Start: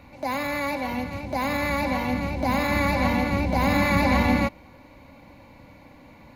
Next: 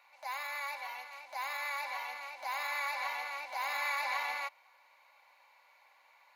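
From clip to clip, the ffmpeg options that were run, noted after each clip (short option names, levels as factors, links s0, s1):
-af "highpass=f=840:w=0.5412,highpass=f=840:w=1.3066,volume=0.376"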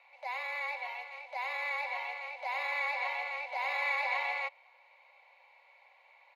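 -af "afreqshift=-22,firequalizer=gain_entry='entry(130,0);entry(200,-20);entry(290,-18);entry(540,2);entry(1500,-10);entry(2200,2);entry(5900,-14);entry(15000,-22)':delay=0.05:min_phase=1,volume=1.5"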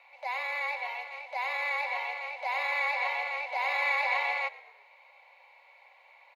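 -filter_complex "[0:a]asplit=4[s0][s1][s2][s3];[s1]adelay=118,afreqshift=-40,volume=0.106[s4];[s2]adelay=236,afreqshift=-80,volume=0.0479[s5];[s3]adelay=354,afreqshift=-120,volume=0.0214[s6];[s0][s4][s5][s6]amix=inputs=4:normalize=0,volume=1.58"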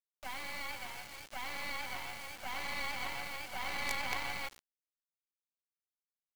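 -af "acrusher=bits=4:dc=4:mix=0:aa=0.000001,volume=0.562"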